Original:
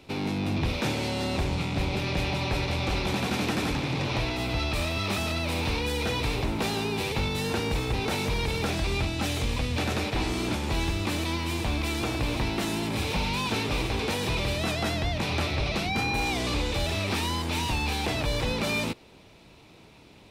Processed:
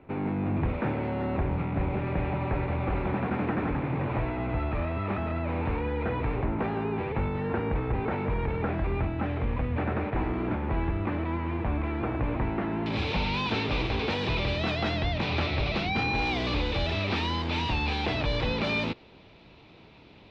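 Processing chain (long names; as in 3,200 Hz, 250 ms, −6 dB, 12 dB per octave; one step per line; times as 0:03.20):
low-pass filter 1,900 Hz 24 dB per octave, from 0:12.86 4,200 Hz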